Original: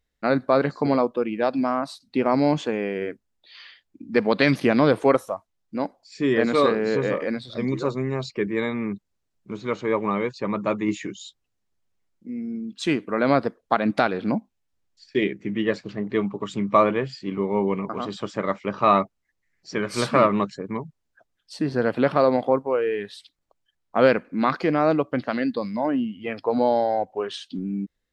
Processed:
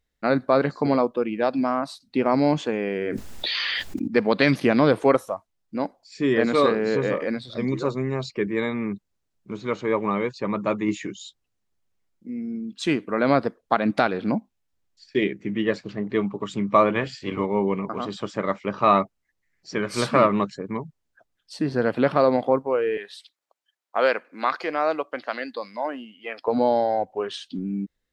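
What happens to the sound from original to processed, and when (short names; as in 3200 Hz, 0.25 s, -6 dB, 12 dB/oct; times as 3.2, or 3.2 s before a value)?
2.87–4.08 fast leveller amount 100%
16.94–17.45 spectral limiter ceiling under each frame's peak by 13 dB
22.97–26.48 HPF 560 Hz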